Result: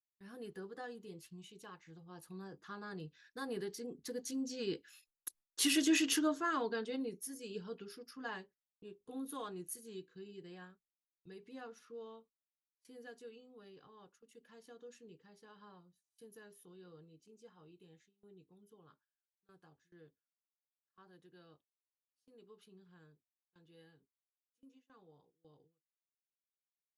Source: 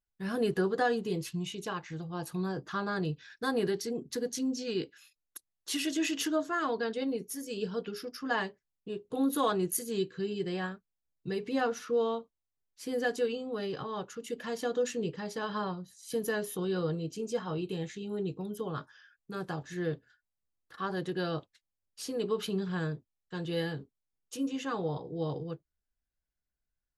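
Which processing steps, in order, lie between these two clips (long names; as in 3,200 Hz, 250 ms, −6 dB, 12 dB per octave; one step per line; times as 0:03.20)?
source passing by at 0:05.71, 6 m/s, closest 3.3 metres
noise gate with hold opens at −57 dBFS
thirty-one-band graphic EQ 125 Hz −9 dB, 630 Hz −5 dB, 10,000 Hz +5 dB
level +1.5 dB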